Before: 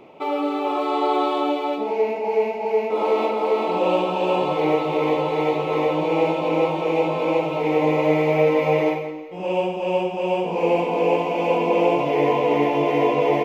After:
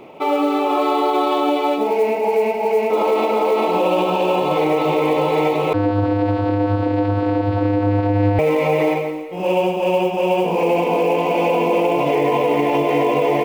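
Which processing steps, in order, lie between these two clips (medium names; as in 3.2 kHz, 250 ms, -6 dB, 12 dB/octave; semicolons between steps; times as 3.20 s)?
peak limiter -15 dBFS, peak gain reduction 8 dB; short-mantissa float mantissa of 4-bit; 5.73–8.39 s: vocoder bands 8, square 101 Hz; trim +6 dB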